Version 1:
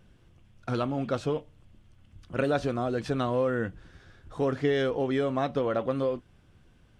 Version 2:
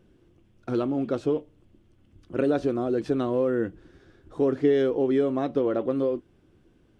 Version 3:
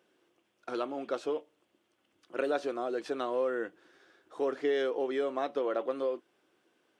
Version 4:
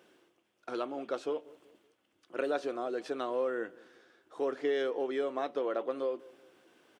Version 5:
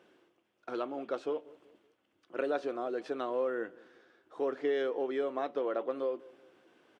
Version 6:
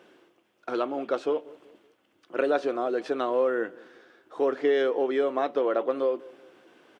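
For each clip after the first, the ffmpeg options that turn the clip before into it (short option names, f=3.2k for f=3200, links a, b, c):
-af "equalizer=f=340:t=o:w=1.1:g=14,volume=-5dB"
-af "highpass=620"
-filter_complex "[0:a]areverse,acompressor=mode=upward:threshold=-52dB:ratio=2.5,areverse,asplit=2[a][b];[b]adelay=189,lowpass=f=1.2k:p=1,volume=-21dB,asplit=2[c][d];[d]adelay=189,lowpass=f=1.2k:p=1,volume=0.43,asplit=2[e][f];[f]adelay=189,lowpass=f=1.2k:p=1,volume=0.43[g];[a][c][e][g]amix=inputs=4:normalize=0,volume=-1.5dB"
-af "lowpass=f=3.2k:p=1"
-af "lowshelf=f=84:g=-8,volume=8dB"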